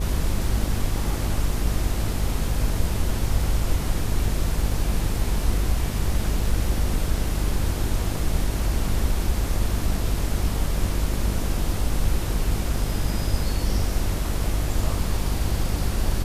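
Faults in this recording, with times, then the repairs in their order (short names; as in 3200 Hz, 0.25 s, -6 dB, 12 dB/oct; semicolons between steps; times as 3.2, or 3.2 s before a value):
buzz 50 Hz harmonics 15 -27 dBFS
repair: de-hum 50 Hz, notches 15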